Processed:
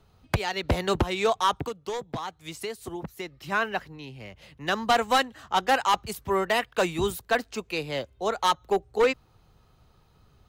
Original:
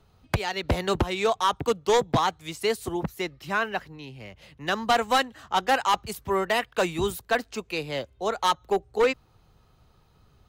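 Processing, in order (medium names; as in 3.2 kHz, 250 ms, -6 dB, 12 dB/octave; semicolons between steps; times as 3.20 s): 1.63–3.52 s: compression 3:1, threshold -34 dBFS, peak gain reduction 12 dB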